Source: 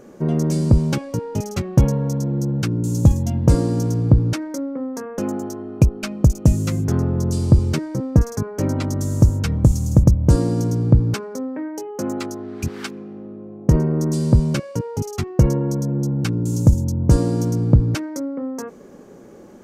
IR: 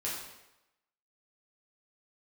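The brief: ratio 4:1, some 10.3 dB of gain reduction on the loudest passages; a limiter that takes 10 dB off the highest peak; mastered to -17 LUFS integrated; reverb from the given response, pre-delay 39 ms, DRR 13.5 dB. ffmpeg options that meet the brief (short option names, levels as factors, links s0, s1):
-filter_complex "[0:a]acompressor=threshold=0.1:ratio=4,alimiter=limit=0.133:level=0:latency=1,asplit=2[s0][s1];[1:a]atrim=start_sample=2205,adelay=39[s2];[s1][s2]afir=irnorm=-1:irlink=0,volume=0.133[s3];[s0][s3]amix=inputs=2:normalize=0,volume=3.16"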